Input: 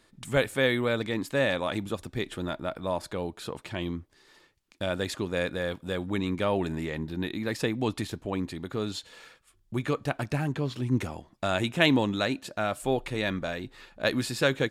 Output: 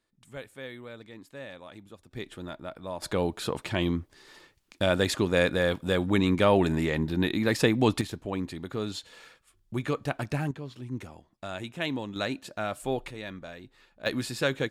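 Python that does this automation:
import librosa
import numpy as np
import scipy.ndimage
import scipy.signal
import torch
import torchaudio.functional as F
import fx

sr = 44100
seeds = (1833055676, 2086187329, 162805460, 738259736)

y = fx.gain(x, sr, db=fx.steps((0.0, -16.5), (2.11, -6.5), (3.02, 5.5), (8.01, -1.0), (10.51, -9.5), (12.16, -3.0), (13.11, -10.0), (14.06, -2.5)))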